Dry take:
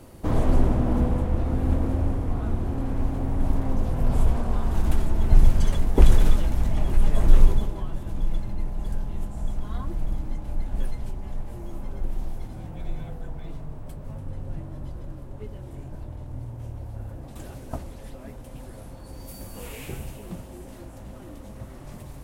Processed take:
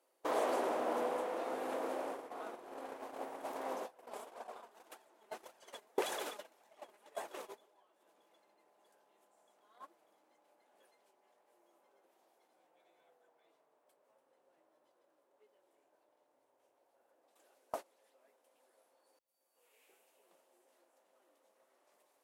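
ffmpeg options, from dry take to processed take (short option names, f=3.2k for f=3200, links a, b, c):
-filter_complex "[0:a]asplit=3[a][b][c];[a]afade=t=out:st=3.85:d=0.02[d];[b]flanger=delay=1.1:depth=3.8:regen=40:speed=1.8:shape=sinusoidal,afade=t=in:st=3.85:d=0.02,afade=t=out:st=7.99:d=0.02[e];[c]afade=t=in:st=7.99:d=0.02[f];[d][e][f]amix=inputs=3:normalize=0,asplit=2[g][h];[g]atrim=end=19.19,asetpts=PTS-STARTPTS,afade=t=out:st=19.186:d=0.004:c=hsin[i];[h]atrim=start=19.19,asetpts=PTS-STARTPTS,afade=t=in:d=1.14[j];[i][j]concat=n=2:v=0:a=1,highpass=f=440:w=0.5412,highpass=f=440:w=1.3066,agate=range=-22dB:threshold=-39dB:ratio=16:detection=peak,volume=-1.5dB"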